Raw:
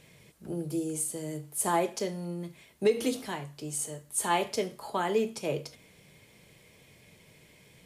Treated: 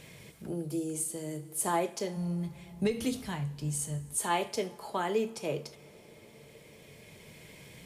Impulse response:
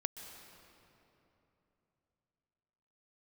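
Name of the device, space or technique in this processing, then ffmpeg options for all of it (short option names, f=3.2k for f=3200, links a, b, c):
ducked reverb: -filter_complex "[0:a]asplit=3[a][b][c];[1:a]atrim=start_sample=2205[d];[b][d]afir=irnorm=-1:irlink=0[e];[c]apad=whole_len=346234[f];[e][f]sidechaincompress=threshold=-51dB:ratio=5:attack=45:release=1200,volume=7dB[g];[a][g]amix=inputs=2:normalize=0,asplit=3[h][i][j];[h]afade=t=out:st=2.16:d=0.02[k];[i]asubboost=boost=11:cutoff=130,afade=t=in:st=2.16:d=0.02,afade=t=out:st=4.16:d=0.02[l];[j]afade=t=in:st=4.16:d=0.02[m];[k][l][m]amix=inputs=3:normalize=0,volume=-3.5dB"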